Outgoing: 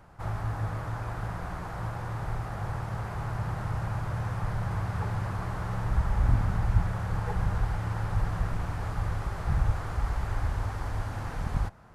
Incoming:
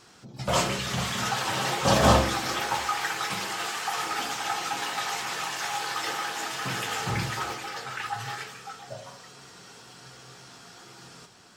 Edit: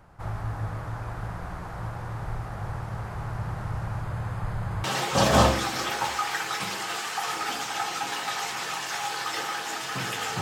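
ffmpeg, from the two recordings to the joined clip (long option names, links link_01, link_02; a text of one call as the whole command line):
ffmpeg -i cue0.wav -i cue1.wav -filter_complex "[0:a]asettb=1/sr,asplit=3[link_01][link_02][link_03];[link_01]atrim=end=4.034[link_04];[link_02]atrim=start=4.03:end=4.84,asetpts=PTS-STARTPTS,afade=type=in:duration=0.004:curve=qsin,afade=type=out:start_time=0.806:duration=0.004:curve=qsin,bandreject=frequency=5700:width=7.7[link_05];[link_03]atrim=start=4.836[link_06];[link_04][link_05]acrossfade=duration=0.004:curve1=hsin:curve2=qsin[link_07];[link_07][link_06]acrossfade=duration=0.004:curve1=qsin:curve2=hsin,apad=whole_dur=10.41,atrim=end=10.41,atrim=end=4.842[link_08];[1:a]atrim=start=1.538:end=7.11[link_09];[link_08][link_09]acrossfade=duration=0.004:curve1=hsin:curve2=hsin" out.wav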